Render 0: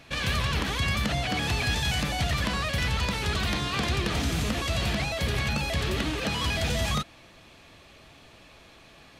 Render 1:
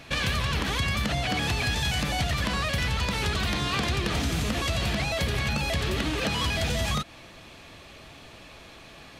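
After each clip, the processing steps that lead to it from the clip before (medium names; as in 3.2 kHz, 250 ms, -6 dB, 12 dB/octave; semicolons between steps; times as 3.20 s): compression 4:1, threshold -29 dBFS, peak gain reduction 6 dB; trim +5 dB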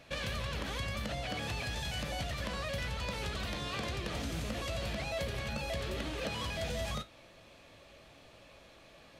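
peaking EQ 560 Hz +8.5 dB 0.38 oct; feedback comb 55 Hz, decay 0.24 s, harmonics all, mix 60%; trim -7.5 dB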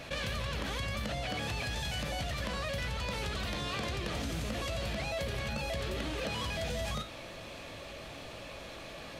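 level flattener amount 50%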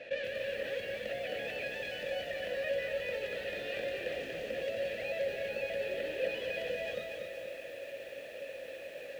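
octave divider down 2 oct, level 0 dB; vowel filter e; bit-crushed delay 239 ms, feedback 55%, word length 11-bit, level -4 dB; trim +8.5 dB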